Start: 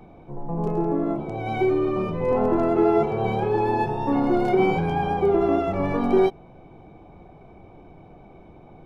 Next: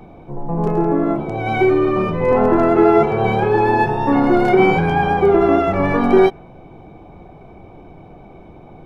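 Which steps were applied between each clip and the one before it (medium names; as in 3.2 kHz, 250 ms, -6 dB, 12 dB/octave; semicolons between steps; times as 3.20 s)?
dynamic bell 1.7 kHz, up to +7 dB, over -45 dBFS, Q 1.5; trim +6.5 dB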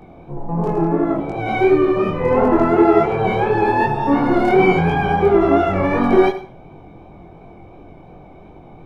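chorus 2.8 Hz, delay 20 ms, depth 5 ms; reverberation RT60 0.45 s, pre-delay 66 ms, DRR 12 dB; trim +2 dB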